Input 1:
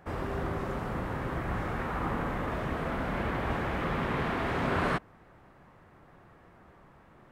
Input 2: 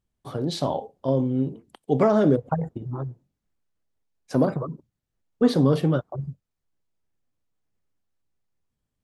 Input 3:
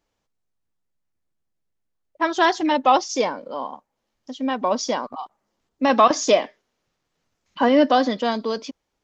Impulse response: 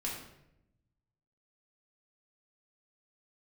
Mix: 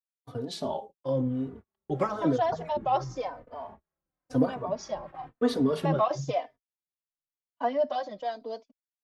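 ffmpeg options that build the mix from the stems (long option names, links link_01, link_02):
-filter_complex "[0:a]highshelf=frequency=3200:gain=-8,flanger=delay=22.5:depth=6.2:speed=0.53,adelay=1050,volume=-12.5dB[link_01];[1:a]lowshelf=frequency=140:gain=-6,volume=0dB[link_02];[2:a]equalizer=frequency=670:width_type=o:width=0.75:gain=13,volume=-13dB[link_03];[link_01][link_02][link_03]amix=inputs=3:normalize=0,acrossover=split=560[link_04][link_05];[link_04]aeval=exprs='val(0)*(1-0.5/2+0.5/2*cos(2*PI*3.2*n/s))':channel_layout=same[link_06];[link_05]aeval=exprs='val(0)*(1-0.5/2-0.5/2*cos(2*PI*3.2*n/s))':channel_layout=same[link_07];[link_06][link_07]amix=inputs=2:normalize=0,agate=range=-38dB:threshold=-41dB:ratio=16:detection=peak,asplit=2[link_08][link_09];[link_09]adelay=3.3,afreqshift=-0.98[link_10];[link_08][link_10]amix=inputs=2:normalize=1"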